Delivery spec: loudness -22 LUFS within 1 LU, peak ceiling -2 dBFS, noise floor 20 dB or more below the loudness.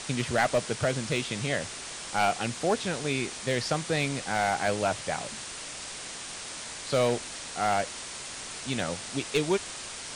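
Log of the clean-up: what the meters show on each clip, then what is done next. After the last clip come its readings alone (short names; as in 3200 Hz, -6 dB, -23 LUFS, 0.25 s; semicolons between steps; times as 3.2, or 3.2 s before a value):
clipped 0.3%; flat tops at -17.0 dBFS; noise floor -40 dBFS; noise floor target -50 dBFS; loudness -30.0 LUFS; peak -17.0 dBFS; loudness target -22.0 LUFS
-> clip repair -17 dBFS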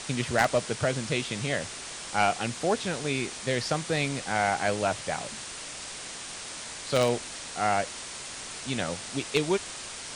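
clipped 0.0%; noise floor -40 dBFS; noise floor target -50 dBFS
-> denoiser 10 dB, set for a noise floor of -40 dBFS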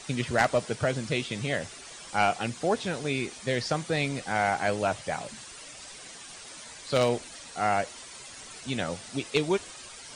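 noise floor -46 dBFS; noise floor target -49 dBFS
-> denoiser 6 dB, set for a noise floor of -46 dBFS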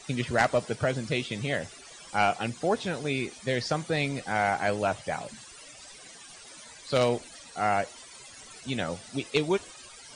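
noise floor -49 dBFS; loudness -29.0 LUFS; peak -8.0 dBFS; loudness target -22.0 LUFS
-> gain +7 dB; limiter -2 dBFS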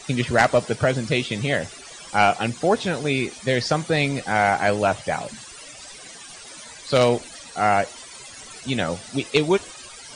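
loudness -22.0 LUFS; peak -2.0 dBFS; noise floor -42 dBFS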